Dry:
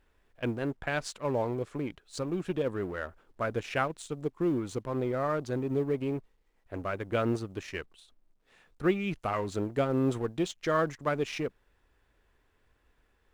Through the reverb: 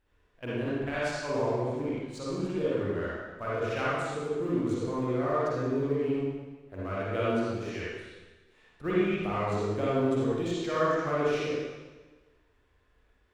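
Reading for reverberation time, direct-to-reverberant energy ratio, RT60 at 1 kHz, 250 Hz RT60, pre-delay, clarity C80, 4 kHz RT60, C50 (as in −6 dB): 1.3 s, −8.5 dB, 1.3 s, 1.3 s, 37 ms, −1.5 dB, 1.2 s, −6.5 dB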